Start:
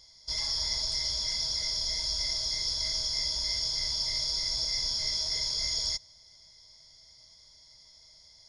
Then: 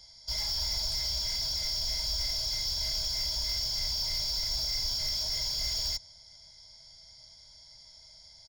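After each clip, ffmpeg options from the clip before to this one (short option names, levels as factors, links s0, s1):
-filter_complex "[0:a]aecho=1:1:1.3:0.49,acrossover=split=110[s0][s1];[s1]asoftclip=type=tanh:threshold=0.0335[s2];[s0][s2]amix=inputs=2:normalize=0,volume=1.19"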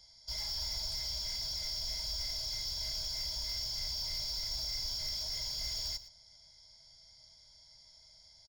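-af "aecho=1:1:115:0.168,volume=0.501"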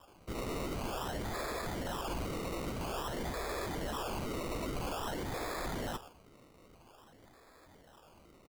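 -af "acrusher=samples=21:mix=1:aa=0.000001:lfo=1:lforange=12.6:lforate=0.5"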